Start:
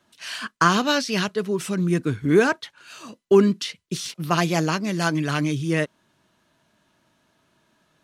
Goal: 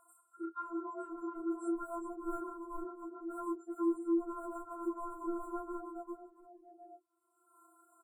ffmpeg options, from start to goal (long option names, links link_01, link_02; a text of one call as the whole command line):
ffmpeg -i in.wav -filter_complex "[0:a]afftfilt=real='re':imag='-im':win_size=2048:overlap=0.75,asubboost=boost=7:cutoff=230,highpass=frequency=93:poles=1,aecho=1:1:400|680|876|1013|1109:0.631|0.398|0.251|0.158|0.1,afftdn=noise_reduction=29:noise_floor=-38,afreqshift=110,acrossover=split=670[link_01][link_02];[link_01]aeval=exprs='0.0944*(abs(mod(val(0)/0.0944+3,4)-2)-1)':channel_layout=same[link_03];[link_02]acompressor=mode=upward:threshold=-35dB:ratio=2.5[link_04];[link_03][link_04]amix=inputs=2:normalize=0,afftfilt=real='re*(1-between(b*sr/4096,1400,7200))':imag='im*(1-between(b*sr/4096,1400,7200))':win_size=4096:overlap=0.75,acompressor=threshold=-38dB:ratio=20,adynamicequalizer=threshold=0.00158:dfrequency=630:dqfactor=0.95:tfrequency=630:tqfactor=0.95:attack=5:release=100:ratio=0.375:range=3:mode=cutabove:tftype=bell,afftfilt=real='re*4*eq(mod(b,16),0)':imag='im*4*eq(mod(b,16),0)':win_size=2048:overlap=0.75,volume=7.5dB" out.wav